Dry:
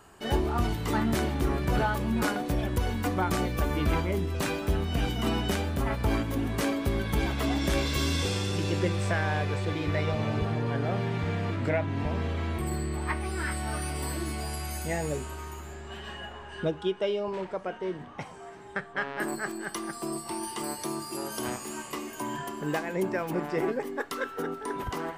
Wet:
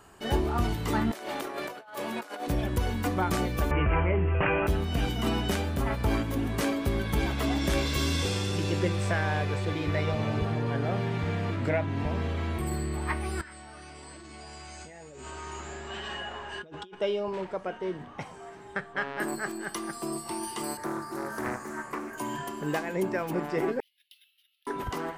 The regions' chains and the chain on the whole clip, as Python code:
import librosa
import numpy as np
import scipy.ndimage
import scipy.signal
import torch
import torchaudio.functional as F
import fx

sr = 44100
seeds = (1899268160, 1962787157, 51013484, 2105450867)

y = fx.chain(x, sr, fx.highpass(hz=480.0, slope=12),
    fx.peak_eq(hz=620.0, db=3.5, octaves=0.43),
    fx.over_compress(threshold_db=-36.0, ratio=-0.5), at=(1.11, 2.47))
y = fx.chain(y, sr, fx.steep_lowpass(hz=2900.0, slope=96),
    fx.peak_eq(hz=250.0, db=-14.5, octaves=0.52),
    fx.env_flatten(amount_pct=70), at=(3.71, 4.67))
y = fx.chain(y, sr, fx.steep_lowpass(hz=8600.0, slope=96),
    fx.over_compress(threshold_db=-40.0, ratio=-1.0),
    fx.low_shelf(hz=210.0, db=-9.0), at=(13.41, 16.95))
y = fx.chain(y, sr, fx.high_shelf_res(hz=2200.0, db=-8.5, q=3.0),
    fx.doppler_dist(depth_ms=0.38), at=(20.77, 22.18))
y = fx.chain(y, sr, fx.steep_highpass(hz=2900.0, slope=48),
    fx.air_absorb(metres=410.0),
    fx.resample_bad(factor=3, down='filtered', up='hold'), at=(23.8, 24.67))